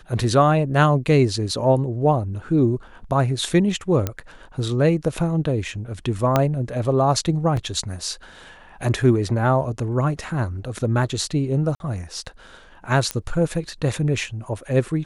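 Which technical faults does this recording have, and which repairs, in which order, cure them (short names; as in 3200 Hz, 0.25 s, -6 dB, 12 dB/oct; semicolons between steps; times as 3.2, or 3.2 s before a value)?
4.07 pop -9 dBFS
6.36 pop -4 dBFS
7.57 gap 3 ms
11.75–11.8 gap 51 ms
13.11 pop -8 dBFS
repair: de-click; interpolate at 7.57, 3 ms; interpolate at 11.75, 51 ms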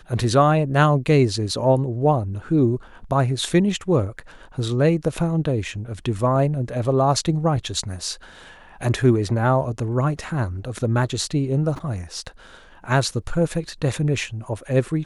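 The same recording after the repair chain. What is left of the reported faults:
6.36 pop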